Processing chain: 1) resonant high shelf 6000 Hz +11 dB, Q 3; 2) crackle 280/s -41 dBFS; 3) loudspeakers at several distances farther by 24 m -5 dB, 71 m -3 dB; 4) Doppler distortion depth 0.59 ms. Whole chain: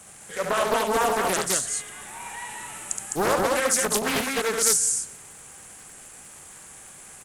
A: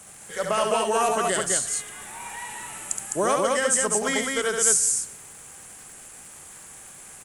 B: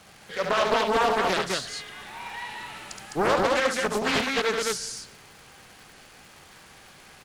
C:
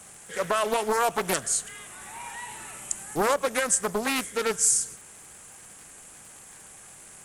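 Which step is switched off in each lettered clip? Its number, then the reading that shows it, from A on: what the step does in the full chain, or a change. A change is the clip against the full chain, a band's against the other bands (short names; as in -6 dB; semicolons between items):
4, 8 kHz band +2.0 dB; 1, 8 kHz band -13.0 dB; 3, 4 kHz band -2.0 dB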